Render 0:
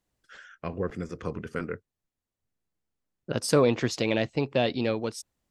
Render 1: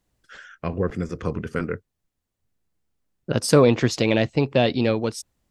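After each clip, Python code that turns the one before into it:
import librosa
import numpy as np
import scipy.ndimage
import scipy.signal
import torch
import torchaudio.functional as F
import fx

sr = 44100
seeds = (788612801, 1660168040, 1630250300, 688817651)

y = fx.low_shelf(x, sr, hz=180.0, db=5.0)
y = F.gain(torch.from_numpy(y), 5.0).numpy()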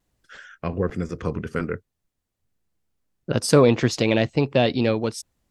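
y = fx.vibrato(x, sr, rate_hz=0.51, depth_cents=12.0)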